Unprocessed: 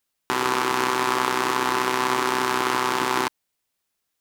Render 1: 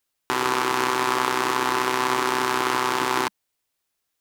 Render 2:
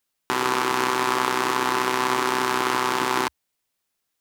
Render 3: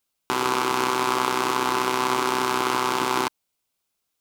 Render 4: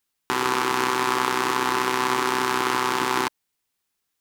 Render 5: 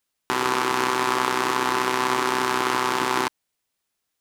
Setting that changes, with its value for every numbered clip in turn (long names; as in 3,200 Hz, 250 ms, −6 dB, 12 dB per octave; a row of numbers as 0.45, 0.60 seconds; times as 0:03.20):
parametric band, centre frequency: 200, 69, 1,800, 600, 16,000 Hertz